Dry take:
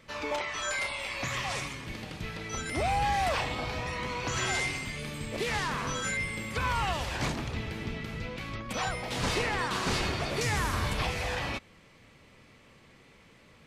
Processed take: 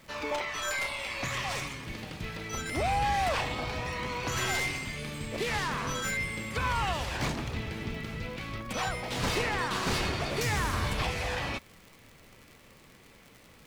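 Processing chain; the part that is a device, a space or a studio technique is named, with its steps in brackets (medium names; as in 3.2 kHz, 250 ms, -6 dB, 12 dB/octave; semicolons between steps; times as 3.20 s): record under a worn stylus (tracing distortion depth 0.036 ms; crackle 88 per s -41 dBFS; pink noise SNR 29 dB)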